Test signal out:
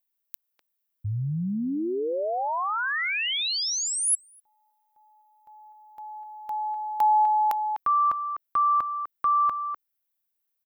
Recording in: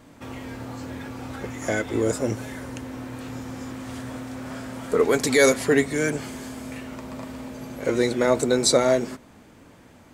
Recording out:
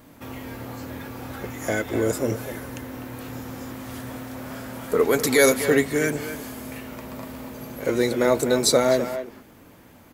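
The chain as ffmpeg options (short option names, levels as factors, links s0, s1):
-filter_complex "[0:a]aexciter=amount=6:drive=1.9:freq=11000,asplit=2[s0][s1];[s1]adelay=250,highpass=300,lowpass=3400,asoftclip=type=hard:threshold=0.2,volume=0.355[s2];[s0][s2]amix=inputs=2:normalize=0"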